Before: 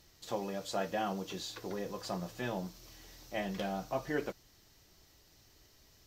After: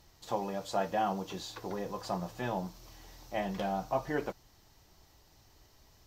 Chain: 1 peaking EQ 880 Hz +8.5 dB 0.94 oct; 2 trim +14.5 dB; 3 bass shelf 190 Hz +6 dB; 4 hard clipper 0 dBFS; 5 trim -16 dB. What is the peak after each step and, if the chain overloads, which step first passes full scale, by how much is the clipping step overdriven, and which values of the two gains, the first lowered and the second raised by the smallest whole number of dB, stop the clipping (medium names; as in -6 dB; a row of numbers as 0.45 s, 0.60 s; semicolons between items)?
-17.5 dBFS, -3.0 dBFS, -2.5 dBFS, -2.5 dBFS, -18.5 dBFS; nothing clips